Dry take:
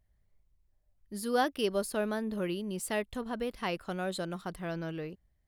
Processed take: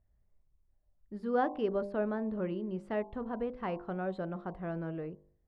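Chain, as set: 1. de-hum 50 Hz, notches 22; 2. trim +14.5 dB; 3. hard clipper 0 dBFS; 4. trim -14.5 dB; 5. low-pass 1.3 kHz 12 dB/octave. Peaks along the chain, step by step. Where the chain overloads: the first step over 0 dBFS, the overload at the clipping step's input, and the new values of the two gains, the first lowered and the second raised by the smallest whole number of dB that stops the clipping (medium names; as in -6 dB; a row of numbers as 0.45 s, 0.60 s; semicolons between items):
-17.0 dBFS, -2.5 dBFS, -2.5 dBFS, -17.0 dBFS, -17.5 dBFS; nothing clips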